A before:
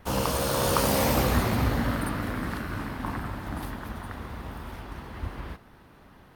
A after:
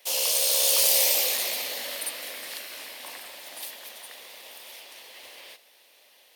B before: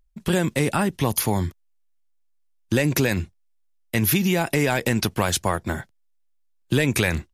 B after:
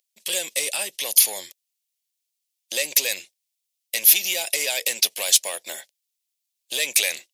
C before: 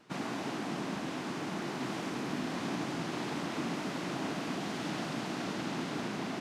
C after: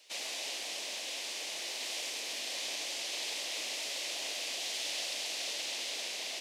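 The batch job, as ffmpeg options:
-af "asoftclip=type=tanh:threshold=0.188,aexciter=amount=13.5:drive=4.3:freq=2100,highpass=f=550:t=q:w=3.5,volume=0.2"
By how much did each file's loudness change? +6.0 LU, +2.5 LU, +1.0 LU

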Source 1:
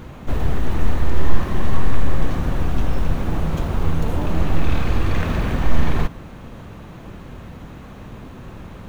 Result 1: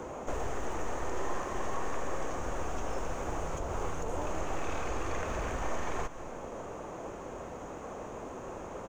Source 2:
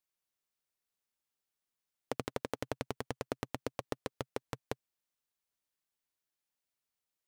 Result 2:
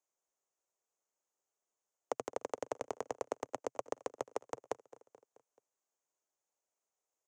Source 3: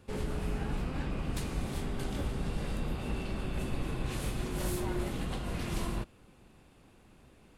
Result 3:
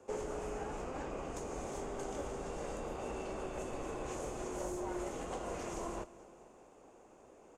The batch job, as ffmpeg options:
-filter_complex "[0:a]firequalizer=gain_entry='entry(450,0);entry(1700,-15);entry(4000,-16);entry(6600,15);entry(11000,0)':delay=0.05:min_phase=1,aecho=1:1:216|432|648|864:0.0794|0.0453|0.0258|0.0147,acrossover=split=110|1300[s0][s1][s2];[s0]acompressor=threshold=0.112:ratio=4[s3];[s1]acompressor=threshold=0.00891:ratio=4[s4];[s2]acompressor=threshold=0.00794:ratio=4[s5];[s3][s4][s5]amix=inputs=3:normalize=0,acrossover=split=400 3600:gain=0.0631 1 0.0631[s6][s7][s8];[s6][s7][s8]amix=inputs=3:normalize=0,volume=3.35"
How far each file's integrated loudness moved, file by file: -14.0 LU, -0.5 LU, -5.5 LU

